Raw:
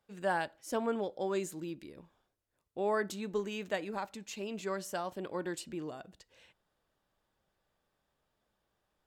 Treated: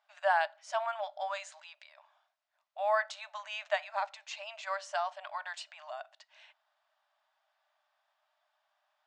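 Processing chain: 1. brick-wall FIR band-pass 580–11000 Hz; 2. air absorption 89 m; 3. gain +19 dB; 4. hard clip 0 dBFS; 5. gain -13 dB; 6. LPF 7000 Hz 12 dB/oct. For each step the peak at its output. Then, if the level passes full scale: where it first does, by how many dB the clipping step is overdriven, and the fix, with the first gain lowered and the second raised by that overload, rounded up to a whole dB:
-22.0, -22.5, -3.5, -3.5, -16.5, -16.5 dBFS; no overload

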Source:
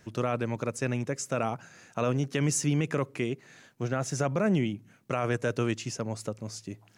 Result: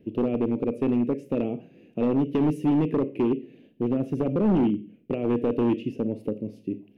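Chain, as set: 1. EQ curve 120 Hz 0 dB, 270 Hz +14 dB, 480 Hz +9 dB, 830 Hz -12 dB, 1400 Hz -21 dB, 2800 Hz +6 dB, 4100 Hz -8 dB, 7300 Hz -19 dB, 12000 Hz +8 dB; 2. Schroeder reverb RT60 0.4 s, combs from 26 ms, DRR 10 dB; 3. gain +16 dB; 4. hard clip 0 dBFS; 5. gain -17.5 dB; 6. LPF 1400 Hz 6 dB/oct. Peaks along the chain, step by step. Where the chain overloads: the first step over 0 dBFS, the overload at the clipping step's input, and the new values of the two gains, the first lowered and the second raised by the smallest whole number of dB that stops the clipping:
-7.0, -7.0, +9.0, 0.0, -17.5, -17.5 dBFS; step 3, 9.0 dB; step 3 +7 dB, step 5 -8.5 dB

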